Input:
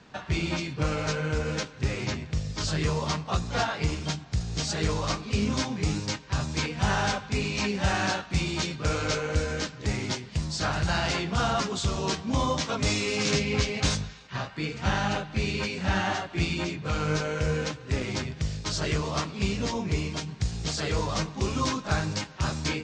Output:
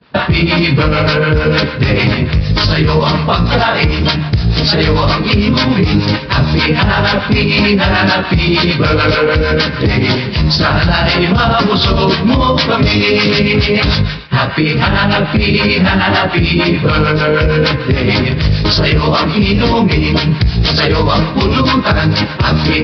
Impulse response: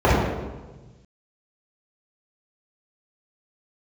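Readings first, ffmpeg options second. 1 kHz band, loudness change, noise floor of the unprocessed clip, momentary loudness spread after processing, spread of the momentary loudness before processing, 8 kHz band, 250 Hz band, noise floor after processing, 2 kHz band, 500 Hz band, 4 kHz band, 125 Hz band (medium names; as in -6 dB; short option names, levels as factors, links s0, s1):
+16.0 dB, +17.0 dB, -45 dBFS, 3 LU, 5 LU, no reading, +18.0 dB, -20 dBFS, +18.0 dB, +17.5 dB, +17.5 dB, +17.0 dB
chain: -filter_complex "[0:a]agate=range=0.0224:threshold=0.00891:ratio=3:detection=peak,acontrast=86,acrossover=split=620[s0][s1];[s0]aeval=exprs='val(0)*(1-0.7/2+0.7/2*cos(2*PI*6.7*n/s))':c=same[s2];[s1]aeval=exprs='val(0)*(1-0.7/2-0.7/2*cos(2*PI*6.7*n/s))':c=same[s3];[s2][s3]amix=inputs=2:normalize=0,bandreject=f=780:w=12,aresample=11025,aresample=44100,highpass=f=45:w=0.5412,highpass=f=45:w=1.3066,acompressor=threshold=0.0398:ratio=6,bandreject=f=74.8:t=h:w=4,bandreject=f=149.6:t=h:w=4,bandreject=f=224.4:t=h:w=4,bandreject=f=299.2:t=h:w=4,bandreject=f=374:t=h:w=4,bandreject=f=448.8:t=h:w=4,bandreject=f=523.6:t=h:w=4,bandreject=f=598.4:t=h:w=4,bandreject=f=673.2:t=h:w=4,bandreject=f=748:t=h:w=4,bandreject=f=822.8:t=h:w=4,bandreject=f=897.6:t=h:w=4,bandreject=f=972.4:t=h:w=4,bandreject=f=1047.2:t=h:w=4,bandreject=f=1122:t=h:w=4,bandreject=f=1196.8:t=h:w=4,bandreject=f=1271.6:t=h:w=4,bandreject=f=1346.4:t=h:w=4,bandreject=f=1421.2:t=h:w=4,bandreject=f=1496:t=h:w=4,bandreject=f=1570.8:t=h:w=4,bandreject=f=1645.6:t=h:w=4,bandreject=f=1720.4:t=h:w=4,bandreject=f=1795.2:t=h:w=4,bandreject=f=1870:t=h:w=4,bandreject=f=1944.8:t=h:w=4,bandreject=f=2019.6:t=h:w=4,bandreject=f=2094.4:t=h:w=4,bandreject=f=2169.2:t=h:w=4,bandreject=f=2244:t=h:w=4,bandreject=f=2318.8:t=h:w=4,bandreject=f=2393.6:t=h:w=4,bandreject=f=2468.4:t=h:w=4,bandreject=f=2543.2:t=h:w=4,bandreject=f=2618:t=h:w=4,bandreject=f=2692.8:t=h:w=4,bandreject=f=2767.6:t=h:w=4,alimiter=level_in=15.8:limit=0.891:release=50:level=0:latency=1,volume=0.891"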